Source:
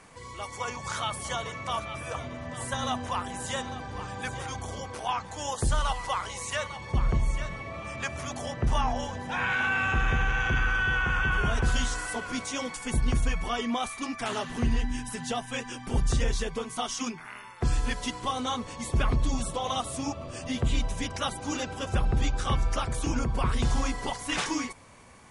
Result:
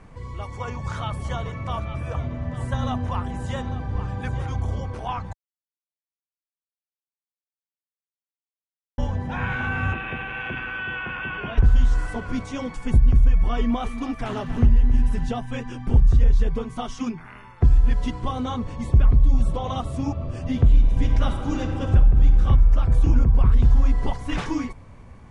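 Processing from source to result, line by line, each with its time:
5.33–8.98 s: mute
9.93–11.58 s: cabinet simulation 330–4100 Hz, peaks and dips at 440 Hz -5 dB, 810 Hz -3 dB, 1.3 kHz -6 dB, 2.6 kHz +7 dB
13.30–15.29 s: bit-crushed delay 271 ms, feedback 35%, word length 8-bit, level -11 dB
20.54–22.41 s: reverb throw, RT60 1.7 s, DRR 4.5 dB
whole clip: RIAA curve playback; compression 4:1, threshold -12 dBFS

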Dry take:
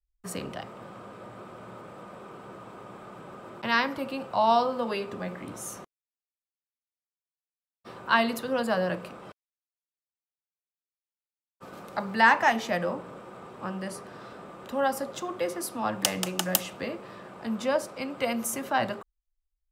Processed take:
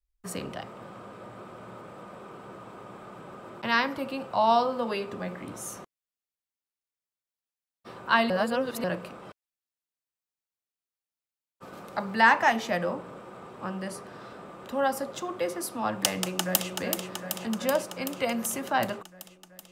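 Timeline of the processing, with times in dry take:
8.30–8.84 s: reverse
16.20–16.71 s: echo throw 380 ms, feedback 75%, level -6 dB

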